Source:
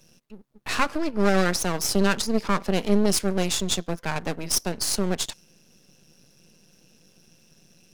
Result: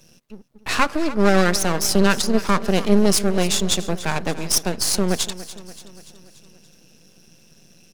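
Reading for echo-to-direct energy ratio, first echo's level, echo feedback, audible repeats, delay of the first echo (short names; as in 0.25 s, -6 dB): -14.5 dB, -16.0 dB, 57%, 4, 0.288 s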